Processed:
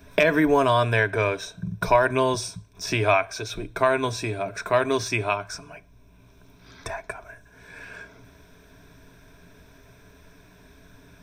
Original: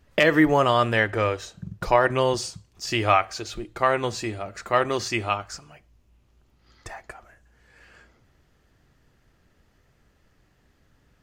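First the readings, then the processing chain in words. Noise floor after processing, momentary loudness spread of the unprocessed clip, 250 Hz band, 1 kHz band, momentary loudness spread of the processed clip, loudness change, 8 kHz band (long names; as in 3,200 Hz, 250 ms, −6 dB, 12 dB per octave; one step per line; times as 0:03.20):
−54 dBFS, 20 LU, −1.0 dB, −1.0 dB, 19 LU, −0.5 dB, +1.0 dB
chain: EQ curve with evenly spaced ripples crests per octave 1.6, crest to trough 13 dB
multiband upward and downward compressor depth 40%
level −1 dB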